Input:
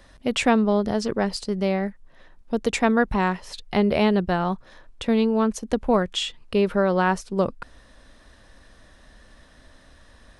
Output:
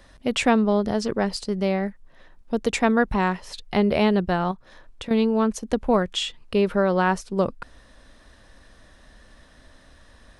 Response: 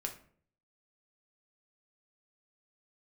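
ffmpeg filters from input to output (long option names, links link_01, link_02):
-filter_complex "[0:a]asettb=1/sr,asplit=3[link_01][link_02][link_03];[link_01]atrim=end=4.514[link_04];[link_02]atrim=start=4.51:end=5.11,asetpts=PTS-STARTPTS,afade=type=in:duration=0.004:curve=qsin,afade=type=out:start_time=0.596:duration=0.004:curve=qsin,acompressor=threshold=-33dB:ratio=4[link_05];[link_03]atrim=start=5.106[link_06];[link_04][link_05]acrossfade=duration=0.004:curve1=hsin:curve2=qsin[link_07];[link_07][link_06]acrossfade=duration=0.004:curve1=qsin:curve2=hsin"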